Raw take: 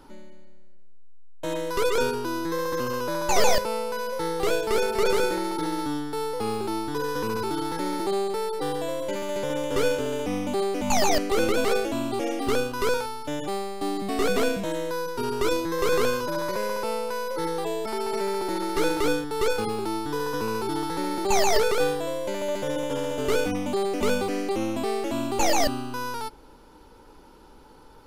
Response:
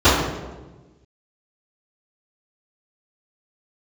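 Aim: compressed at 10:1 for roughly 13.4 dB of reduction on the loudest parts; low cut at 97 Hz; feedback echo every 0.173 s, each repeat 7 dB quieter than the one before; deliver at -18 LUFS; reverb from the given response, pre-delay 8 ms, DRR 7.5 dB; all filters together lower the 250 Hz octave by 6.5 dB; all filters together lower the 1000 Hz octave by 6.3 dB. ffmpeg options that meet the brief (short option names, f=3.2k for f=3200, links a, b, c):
-filter_complex "[0:a]highpass=97,equalizer=f=250:t=o:g=-8.5,equalizer=f=1k:t=o:g=-7.5,acompressor=threshold=-36dB:ratio=10,aecho=1:1:173|346|519|692|865:0.447|0.201|0.0905|0.0407|0.0183,asplit=2[a][b];[1:a]atrim=start_sample=2205,adelay=8[c];[b][c]afir=irnorm=-1:irlink=0,volume=-34dB[d];[a][d]amix=inputs=2:normalize=0,volume=19dB"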